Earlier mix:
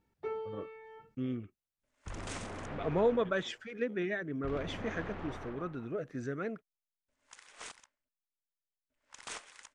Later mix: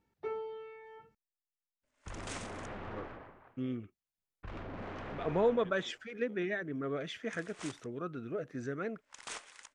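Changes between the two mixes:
speech: entry +2.40 s; master: add low shelf 180 Hz -3 dB

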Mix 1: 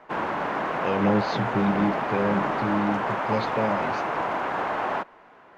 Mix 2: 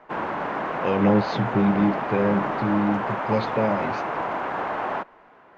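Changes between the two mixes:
speech +3.5 dB; master: add high shelf 4200 Hz -7.5 dB

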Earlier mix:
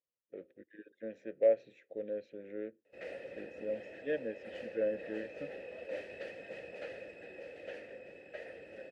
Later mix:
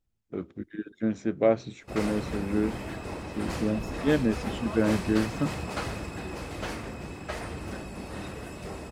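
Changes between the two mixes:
background: entry -1.05 s; master: remove vowel filter e

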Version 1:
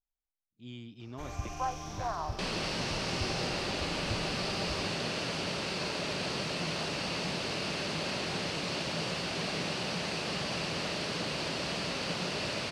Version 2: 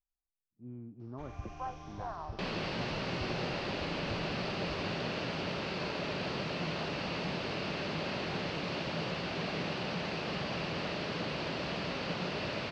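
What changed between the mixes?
speech: add steep low-pass 1500 Hz 36 dB/oct; first sound -5.5 dB; master: add air absorption 190 m

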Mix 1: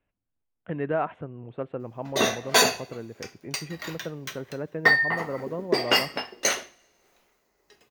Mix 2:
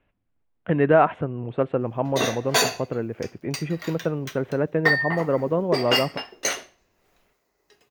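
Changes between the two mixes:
speech +10.0 dB; reverb: off

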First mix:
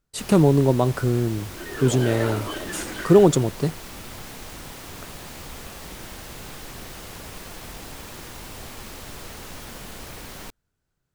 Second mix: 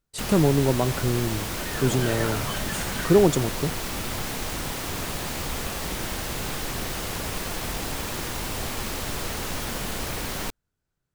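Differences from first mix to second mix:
speech -3.5 dB; first sound +8.0 dB; second sound: remove resonant high-pass 330 Hz, resonance Q 3.9

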